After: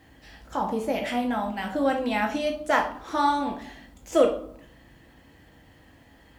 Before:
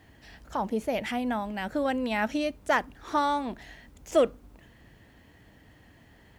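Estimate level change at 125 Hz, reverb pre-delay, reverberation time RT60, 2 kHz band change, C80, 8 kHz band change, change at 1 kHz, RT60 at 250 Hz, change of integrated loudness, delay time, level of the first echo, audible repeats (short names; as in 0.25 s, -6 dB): +1.0 dB, 4 ms, 0.65 s, +2.0 dB, 12.5 dB, +2.5 dB, +3.5 dB, 1.1 s, +3.0 dB, none, none, none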